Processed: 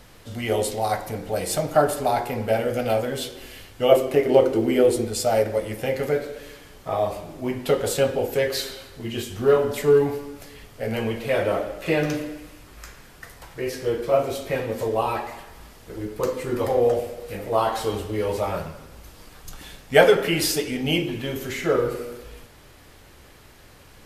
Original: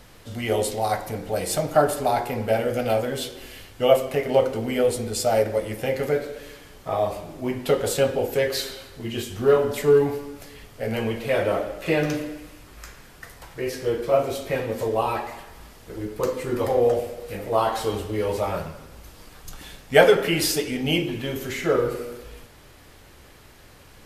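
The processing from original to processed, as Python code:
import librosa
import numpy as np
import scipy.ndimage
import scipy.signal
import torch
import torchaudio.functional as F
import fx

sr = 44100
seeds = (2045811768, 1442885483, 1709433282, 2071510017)

y = fx.peak_eq(x, sr, hz=340.0, db=14.5, octaves=0.47, at=(3.92, 5.05))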